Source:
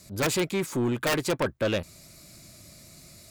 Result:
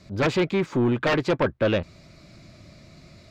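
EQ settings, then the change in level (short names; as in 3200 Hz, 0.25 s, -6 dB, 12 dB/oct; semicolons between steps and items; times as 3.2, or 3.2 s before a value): air absorption 210 m; +5.0 dB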